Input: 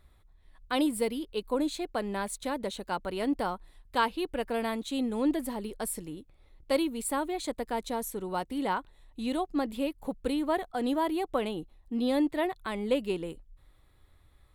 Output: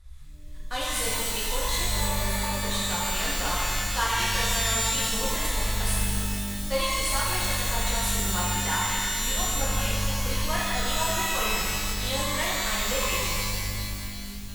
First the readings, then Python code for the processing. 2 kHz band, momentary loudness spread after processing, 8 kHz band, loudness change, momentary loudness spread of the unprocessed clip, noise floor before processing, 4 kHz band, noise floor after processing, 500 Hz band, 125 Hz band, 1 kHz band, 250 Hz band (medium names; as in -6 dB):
+11.0 dB, 5 LU, +16.5 dB, +5.5 dB, 7 LU, -61 dBFS, +13.5 dB, -37 dBFS, -2.5 dB, +17.0 dB, +4.0 dB, -5.0 dB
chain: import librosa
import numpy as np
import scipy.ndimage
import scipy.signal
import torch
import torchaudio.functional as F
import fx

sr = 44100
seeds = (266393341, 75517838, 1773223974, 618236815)

p1 = fx.cvsd(x, sr, bps=64000)
p2 = fx.harmonic_tremolo(p1, sr, hz=2.7, depth_pct=50, crossover_hz=850.0)
p3 = fx.tone_stack(p2, sr, knobs='10-0-10')
p4 = fx.spec_repair(p3, sr, seeds[0], start_s=1.93, length_s=0.58, low_hz=500.0, high_hz=10000.0, source='after')
p5 = fx.low_shelf(p4, sr, hz=300.0, db=10.0)
p6 = p5 + fx.echo_wet_highpass(p5, sr, ms=233, feedback_pct=82, hz=2900.0, wet_db=-12.0, dry=0)
p7 = fx.rev_shimmer(p6, sr, seeds[1], rt60_s=2.2, semitones=12, shimmer_db=-2, drr_db=-6.5)
y = p7 * librosa.db_to_amplitude(7.0)